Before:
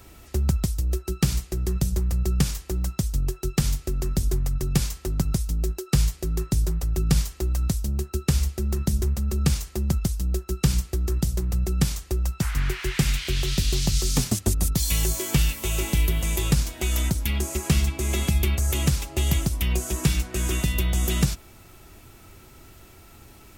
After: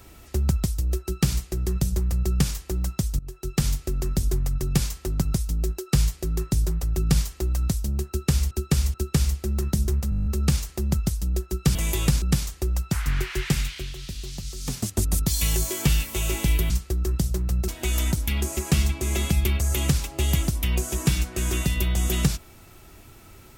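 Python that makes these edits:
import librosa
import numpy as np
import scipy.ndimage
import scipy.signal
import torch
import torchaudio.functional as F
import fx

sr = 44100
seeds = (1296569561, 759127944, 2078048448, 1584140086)

y = fx.edit(x, sr, fx.fade_in_from(start_s=3.19, length_s=0.43, floor_db=-20.5),
    fx.repeat(start_s=8.08, length_s=0.43, count=3),
    fx.stutter(start_s=9.24, slice_s=0.02, count=9),
    fx.swap(start_s=10.73, length_s=0.98, other_s=16.19, other_length_s=0.47),
    fx.fade_down_up(start_s=12.92, length_s=1.65, db=-11.5, fade_s=0.5), tone=tone)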